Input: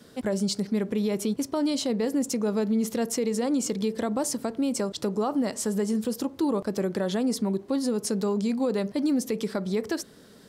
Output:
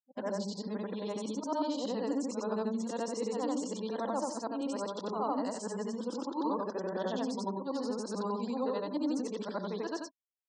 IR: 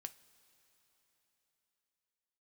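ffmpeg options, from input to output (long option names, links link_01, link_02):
-filter_complex "[0:a]afftfilt=real='re':imag='-im':win_size=8192:overlap=0.75,highshelf=frequency=5900:gain=-4.5,asplit=2[link_01][link_02];[link_02]adelay=61,lowpass=frequency=4200:poles=1,volume=-16dB,asplit=2[link_03][link_04];[link_04]adelay=61,lowpass=frequency=4200:poles=1,volume=0.33,asplit=2[link_05][link_06];[link_06]adelay=61,lowpass=frequency=4200:poles=1,volume=0.33[link_07];[link_03][link_05][link_07]amix=inputs=3:normalize=0[link_08];[link_01][link_08]amix=inputs=2:normalize=0,agate=range=-16dB:threshold=-40dB:ratio=16:detection=peak,highpass=280,equalizer=frequency=400:width_type=q:width=4:gain=-5,equalizer=frequency=970:width_type=q:width=4:gain=9,equalizer=frequency=2200:width_type=q:width=4:gain=-10,lowpass=frequency=8000:width=0.5412,lowpass=frequency=8000:width=1.3066,acrossover=split=460|1100[link_09][link_10][link_11];[link_11]alimiter=level_in=12.5dB:limit=-24dB:level=0:latency=1:release=15,volume=-12.5dB[link_12];[link_09][link_10][link_12]amix=inputs=3:normalize=0,afftfilt=real='re*gte(hypot(re,im),0.00282)':imag='im*gte(hypot(re,im),0.00282)':win_size=1024:overlap=0.75"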